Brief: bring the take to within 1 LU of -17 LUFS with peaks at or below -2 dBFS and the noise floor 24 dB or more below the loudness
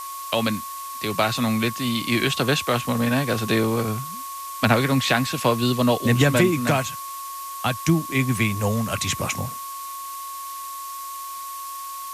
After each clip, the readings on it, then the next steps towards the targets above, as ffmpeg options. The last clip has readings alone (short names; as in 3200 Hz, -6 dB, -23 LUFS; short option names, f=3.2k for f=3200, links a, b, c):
steady tone 1100 Hz; tone level -32 dBFS; noise floor -34 dBFS; noise floor target -48 dBFS; loudness -23.5 LUFS; peak -4.5 dBFS; loudness target -17.0 LUFS
-> -af "bandreject=f=1.1k:w=30"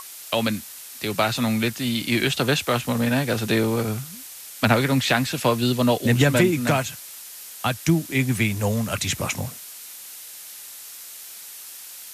steady tone none; noise floor -40 dBFS; noise floor target -47 dBFS
-> -af "afftdn=nr=7:nf=-40"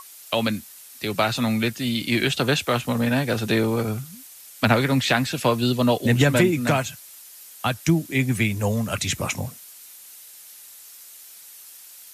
noise floor -45 dBFS; noise floor target -47 dBFS
-> -af "afftdn=nr=6:nf=-45"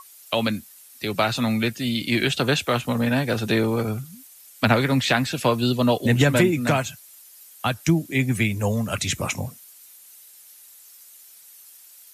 noise floor -49 dBFS; loudness -22.5 LUFS; peak -5.0 dBFS; loudness target -17.0 LUFS
-> -af "volume=5.5dB,alimiter=limit=-2dB:level=0:latency=1"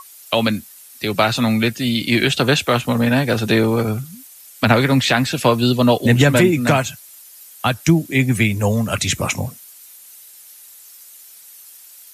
loudness -17.5 LUFS; peak -2.0 dBFS; noise floor -43 dBFS